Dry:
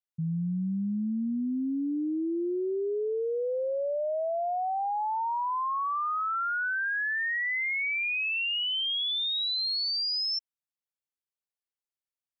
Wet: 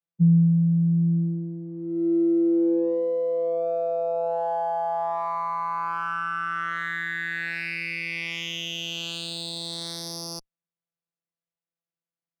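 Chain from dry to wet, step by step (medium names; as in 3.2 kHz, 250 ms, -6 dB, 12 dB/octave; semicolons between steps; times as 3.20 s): vocoder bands 16, saw 168 Hz; sliding maximum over 3 samples; trim +5.5 dB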